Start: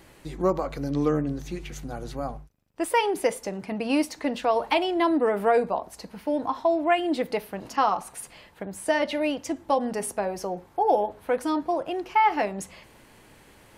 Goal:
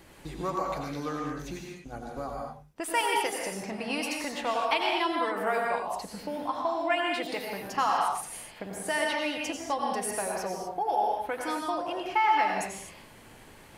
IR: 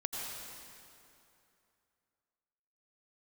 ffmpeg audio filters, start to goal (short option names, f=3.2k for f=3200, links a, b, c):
-filter_complex "[0:a]asplit=3[a][b][c];[a]afade=t=out:st=1.57:d=0.02[d];[b]agate=range=-19dB:threshold=-33dB:ratio=16:detection=peak,afade=t=in:st=1.57:d=0.02,afade=t=out:st=2.16:d=0.02[e];[c]afade=t=in:st=2.16:d=0.02[f];[d][e][f]amix=inputs=3:normalize=0,acrossover=split=910[g][h];[g]acompressor=threshold=-34dB:ratio=6[i];[i][h]amix=inputs=2:normalize=0[j];[1:a]atrim=start_sample=2205,afade=t=out:st=0.31:d=0.01,atrim=end_sample=14112[k];[j][k]afir=irnorm=-1:irlink=0"